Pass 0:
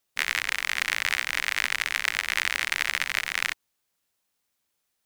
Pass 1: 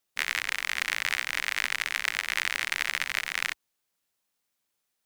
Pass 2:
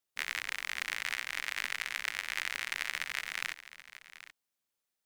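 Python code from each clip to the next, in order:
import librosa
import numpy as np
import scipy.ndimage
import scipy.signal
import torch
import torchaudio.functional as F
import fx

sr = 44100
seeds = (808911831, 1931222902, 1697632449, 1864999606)

y1 = fx.peak_eq(x, sr, hz=61.0, db=-11.5, octaves=0.63)
y1 = y1 * librosa.db_to_amplitude(-2.5)
y2 = y1 + 10.0 ** (-15.0 / 20.0) * np.pad(y1, (int(780 * sr / 1000.0), 0))[:len(y1)]
y2 = y2 * librosa.db_to_amplitude(-7.0)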